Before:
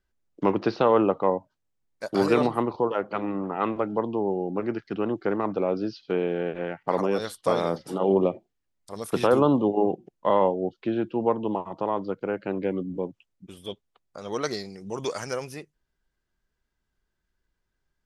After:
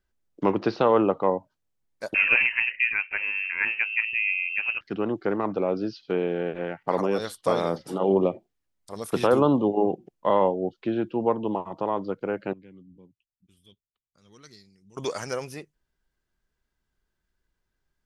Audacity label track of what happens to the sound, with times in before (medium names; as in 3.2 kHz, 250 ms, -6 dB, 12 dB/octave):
2.140000	4.810000	frequency inversion carrier 2.9 kHz
12.530000	14.970000	amplifier tone stack bass-middle-treble 6-0-2